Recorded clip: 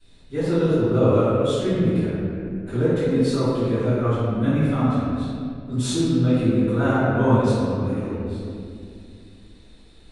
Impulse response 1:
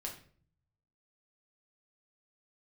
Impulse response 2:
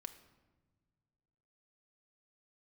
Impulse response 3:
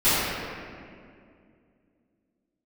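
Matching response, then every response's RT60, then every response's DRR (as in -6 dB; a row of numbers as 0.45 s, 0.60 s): 3; 0.50 s, no single decay rate, 2.3 s; -1.0 dB, 7.5 dB, -18.5 dB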